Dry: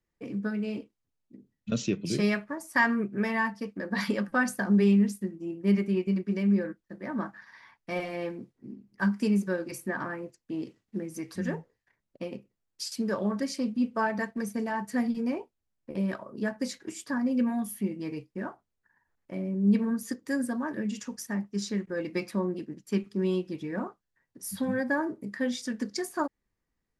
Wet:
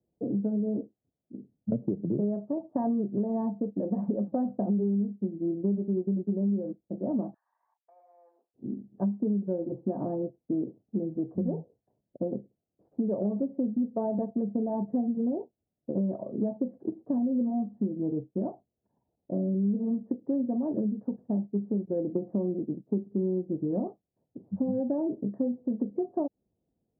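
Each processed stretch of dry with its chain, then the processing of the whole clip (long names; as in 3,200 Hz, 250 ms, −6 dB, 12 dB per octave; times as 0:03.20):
0:07.34–0:08.54: high-pass filter 1,100 Hz 24 dB per octave + downward compressor 3 to 1, threshold −54 dBFS + high-shelf EQ 2,000 Hz +10.5 dB
whole clip: elliptic low-pass filter 710 Hz, stop band 80 dB; downward compressor 6 to 1, threshold −34 dBFS; high-pass filter 92 Hz; level +8.5 dB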